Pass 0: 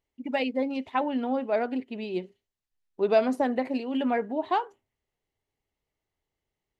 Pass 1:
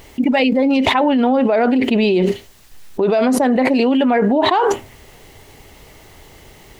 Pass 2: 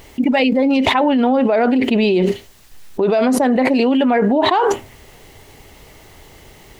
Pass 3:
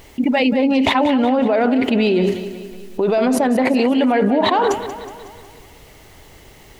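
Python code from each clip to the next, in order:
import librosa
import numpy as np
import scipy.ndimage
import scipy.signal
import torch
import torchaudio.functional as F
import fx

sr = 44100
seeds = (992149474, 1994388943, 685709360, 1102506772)

y1 = fx.env_flatten(x, sr, amount_pct=100)
y1 = y1 * 10.0 ** (2.5 / 20.0)
y2 = y1
y3 = fx.echo_feedback(y2, sr, ms=184, feedback_pct=55, wet_db=-12)
y3 = y3 * 10.0 ** (-1.5 / 20.0)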